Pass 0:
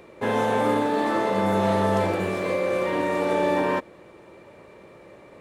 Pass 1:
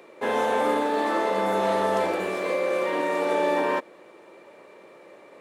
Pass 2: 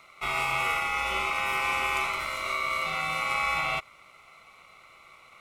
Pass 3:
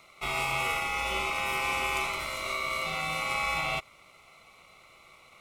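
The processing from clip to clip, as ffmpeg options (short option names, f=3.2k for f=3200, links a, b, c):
-af "highpass=310"
-af "highshelf=f=4.4k:t=q:w=1.5:g=6.5,aeval=exprs='val(0)*sin(2*PI*1700*n/s)':c=same,volume=-1.5dB"
-af "equalizer=f=1.5k:t=o:w=1.4:g=-7.5,volume=2dB"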